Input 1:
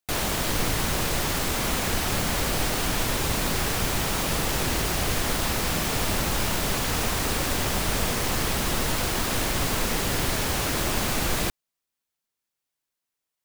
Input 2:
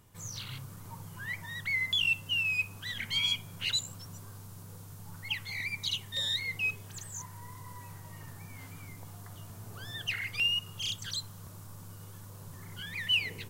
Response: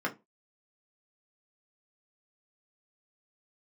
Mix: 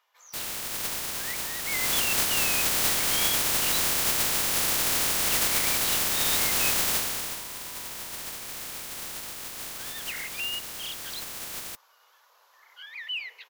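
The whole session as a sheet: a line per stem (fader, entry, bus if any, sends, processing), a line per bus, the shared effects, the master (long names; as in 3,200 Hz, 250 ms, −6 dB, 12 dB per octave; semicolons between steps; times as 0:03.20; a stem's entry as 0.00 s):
0:01.63 −7.5 dB → 0:01.86 0 dB → 0:06.92 0 dB → 0:07.46 −12.5 dB, 0.25 s, no send, compressing power law on the bin magnitudes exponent 0.12
+0.5 dB, 0.00 s, no send, Bessel high-pass filter 970 Hz, order 8; soft clipping −27 dBFS, distortion −15 dB; moving average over 5 samples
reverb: not used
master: no processing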